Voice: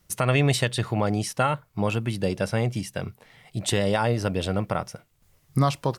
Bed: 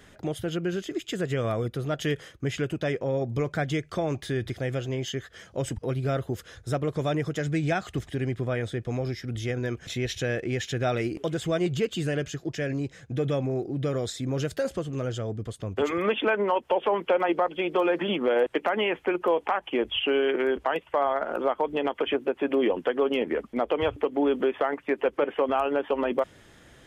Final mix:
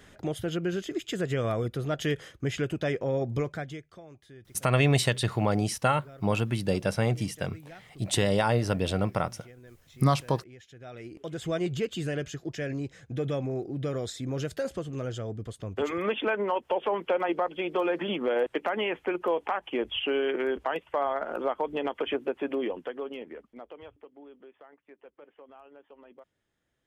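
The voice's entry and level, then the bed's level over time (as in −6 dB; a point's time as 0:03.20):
4.45 s, −1.5 dB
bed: 0:03.38 −1 dB
0:04.05 −21.5 dB
0:10.75 −21.5 dB
0:11.48 −3.5 dB
0:22.35 −3.5 dB
0:24.30 −27 dB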